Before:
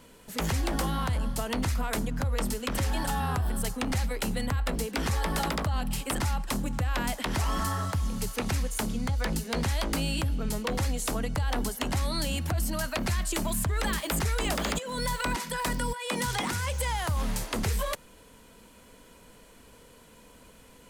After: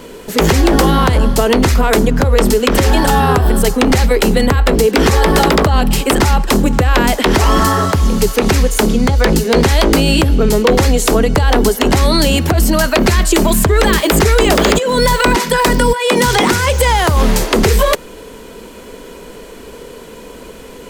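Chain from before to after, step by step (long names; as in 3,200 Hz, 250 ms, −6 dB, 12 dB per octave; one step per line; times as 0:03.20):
graphic EQ with 15 bands 100 Hz −6 dB, 400 Hz +10 dB, 10,000 Hz −5 dB
boost into a limiter +19 dB
level −1 dB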